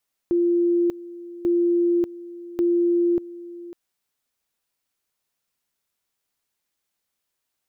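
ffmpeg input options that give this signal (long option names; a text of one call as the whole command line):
ffmpeg -f lavfi -i "aevalsrc='pow(10,(-16.5-18*gte(mod(t,1.14),0.59))/20)*sin(2*PI*346*t)':duration=3.42:sample_rate=44100" out.wav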